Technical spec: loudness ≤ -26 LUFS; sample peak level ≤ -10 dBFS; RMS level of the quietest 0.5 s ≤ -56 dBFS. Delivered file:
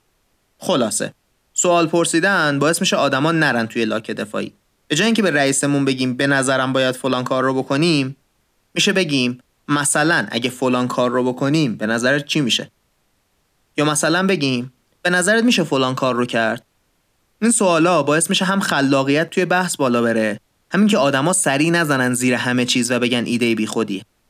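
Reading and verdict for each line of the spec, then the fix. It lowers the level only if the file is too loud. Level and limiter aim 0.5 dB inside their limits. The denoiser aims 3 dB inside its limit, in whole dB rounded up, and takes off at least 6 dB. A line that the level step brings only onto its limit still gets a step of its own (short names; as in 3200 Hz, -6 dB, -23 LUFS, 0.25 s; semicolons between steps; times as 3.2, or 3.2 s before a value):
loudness -17.5 LUFS: fail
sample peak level -6.0 dBFS: fail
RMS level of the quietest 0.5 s -64 dBFS: OK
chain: gain -9 dB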